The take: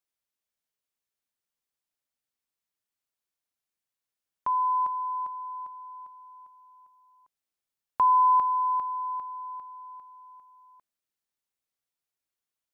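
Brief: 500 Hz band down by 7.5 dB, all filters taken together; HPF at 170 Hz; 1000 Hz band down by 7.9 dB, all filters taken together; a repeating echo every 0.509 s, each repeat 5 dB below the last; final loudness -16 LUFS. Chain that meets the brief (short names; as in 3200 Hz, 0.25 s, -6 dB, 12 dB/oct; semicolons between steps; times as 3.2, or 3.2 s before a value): HPF 170 Hz; bell 500 Hz -7.5 dB; bell 1000 Hz -6.5 dB; feedback echo 0.509 s, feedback 56%, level -5 dB; gain +17 dB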